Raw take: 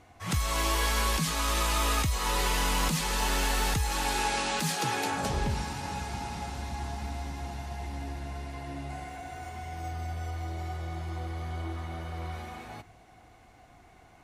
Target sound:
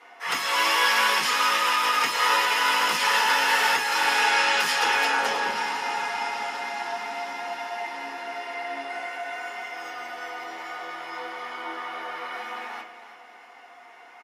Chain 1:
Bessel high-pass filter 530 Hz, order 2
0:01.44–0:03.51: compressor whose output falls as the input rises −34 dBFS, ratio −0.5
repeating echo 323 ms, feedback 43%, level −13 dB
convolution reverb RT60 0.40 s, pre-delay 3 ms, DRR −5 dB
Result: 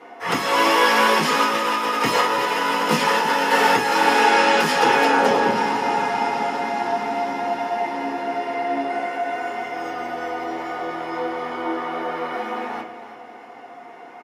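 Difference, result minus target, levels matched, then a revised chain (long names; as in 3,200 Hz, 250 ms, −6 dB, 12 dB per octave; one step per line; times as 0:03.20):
500 Hz band +9.0 dB
Bessel high-pass filter 1,600 Hz, order 2
0:01.44–0:03.51: compressor whose output falls as the input rises −34 dBFS, ratio −0.5
repeating echo 323 ms, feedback 43%, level −13 dB
convolution reverb RT60 0.40 s, pre-delay 3 ms, DRR −5 dB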